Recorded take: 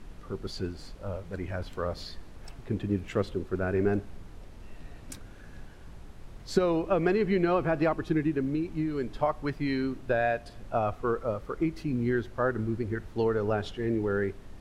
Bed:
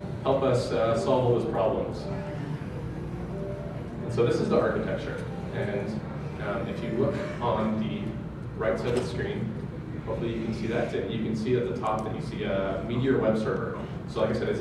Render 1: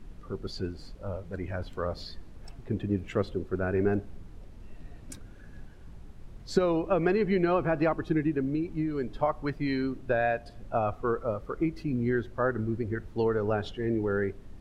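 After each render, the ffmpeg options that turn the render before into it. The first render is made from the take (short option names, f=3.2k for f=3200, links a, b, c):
-af "afftdn=nr=6:nf=-48"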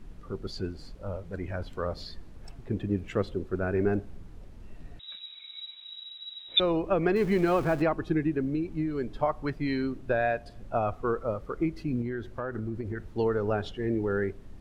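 -filter_complex "[0:a]asettb=1/sr,asplit=3[a][b][c];[a]atrim=end=4.994[d];[b]atrim=start=4.99:end=6.6,asetpts=PTS-STARTPTS,afade=t=in:d=0.004:c=qsin,afade=t=out:st=1.606:d=0.004:c=qsin,lowpass=f=3.3k:t=q:w=0.5098,lowpass=f=3.3k:t=q:w=0.6013,lowpass=f=3.3k:t=q:w=0.9,lowpass=f=3.3k:t=q:w=2.563,afreqshift=-3900[e];[c]atrim=start=6.596[f];[d][e]acrossfade=d=0.004:c1=hsin:c2=qsin[g];[g][f]acrossfade=d=0.004:c1=qsin:c2=hsin,asettb=1/sr,asplit=3[h][i][j];[h]atrim=end=7.164[k];[i]atrim=start=7.16:end=7.82,asetpts=PTS-STARTPTS,afade=t=in:d=0.004:c=qsin,afade=t=out:st=0.656:d=0.004:c=qsin,aeval=exprs='val(0)+0.5*0.0133*sgn(val(0))':c=same[l];[j]atrim=start=7.816[m];[k][l]acrossfade=d=0.004:c1=hsin:c2=qsin[n];[n][m]acrossfade=d=0.004:c1=qsin:c2=hsin,asettb=1/sr,asplit=3[o][p][q];[o]atrim=end=12.014[r];[p]atrim=start=12.01:end=13.07,asetpts=PTS-STARTPTS,afade=t=in:d=0.004:c=qsin,afade=t=out:st=1.056:d=0.004:c=qsin,acompressor=threshold=-29dB:ratio=6:attack=3.2:release=140:knee=1:detection=peak[s];[q]atrim=start=13.066[t];[r][s]acrossfade=d=0.004:c1=hsin:c2=qsin[u];[u][t]acrossfade=d=0.004:c1=qsin:c2=hsin"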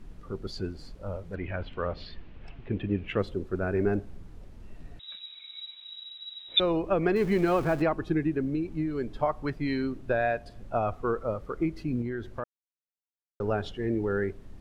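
-filter_complex "[0:a]asettb=1/sr,asplit=3[a][b][c];[a]atrim=end=1.354[d];[b]atrim=start=1.35:end=3.19,asetpts=PTS-STARTPTS,afade=t=in:d=0.004:c=qsin,afade=t=out:st=1.836:d=0.004:c=qsin,lowpass=f=2.8k:t=q:w=2.6[e];[c]atrim=start=3.186[f];[d][e]acrossfade=d=0.004:c1=hsin:c2=qsin[g];[g][f]acrossfade=d=0.004:c1=qsin:c2=hsin,asplit=3[h][i][j];[h]atrim=end=12.44,asetpts=PTS-STARTPTS,afade=t=out:st=12.436:d=0.004:c=hsin[k];[i]atrim=start=12.44:end=13.4,asetpts=PTS-STARTPTS,volume=0[l];[j]atrim=start=13.4,asetpts=PTS-STARTPTS,afade=t=in:d=0.004:c=hsin[m];[k][l][m]concat=n=3:v=0:a=1"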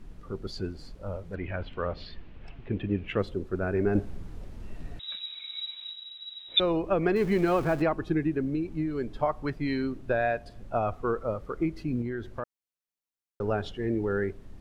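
-filter_complex "[0:a]asplit=3[a][b][c];[a]atrim=end=3.952[d];[b]atrim=start=3.948:end=5.922,asetpts=PTS-STARTPTS,volume=5.5dB[e];[c]atrim=start=5.918[f];[d][e]acrossfade=d=0.004:c1=hsin:c2=hsin[g];[g][f]acrossfade=d=0.004:c1=hsin:c2=hsin"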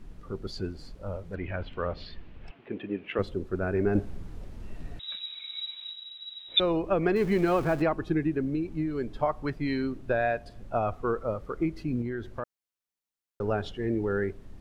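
-filter_complex "[0:a]asettb=1/sr,asplit=3[a][b][c];[a]atrim=end=2.514[d];[b]atrim=start=2.51:end=3.19,asetpts=PTS-STARTPTS,afade=t=in:d=0.004:c=qsin,afade=t=out:st=0.676:d=0.004:c=qsin,highpass=280,lowpass=3.9k[e];[c]atrim=start=3.186[f];[d][e]acrossfade=d=0.004:c1=hsin:c2=qsin[g];[g][f]acrossfade=d=0.004:c1=qsin:c2=hsin"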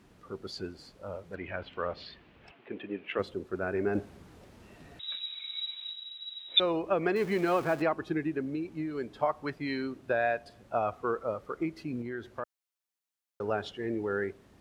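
-af "highpass=75,lowshelf=f=260:g=-10.5"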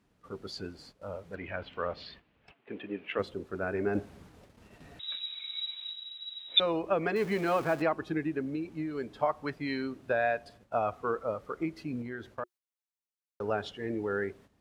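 -af "bandreject=f=360:w=12,agate=range=-11dB:threshold=-53dB:ratio=16:detection=peak"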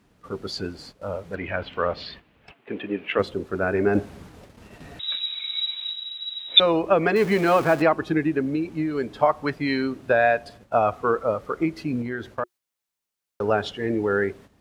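-af "volume=9.5dB"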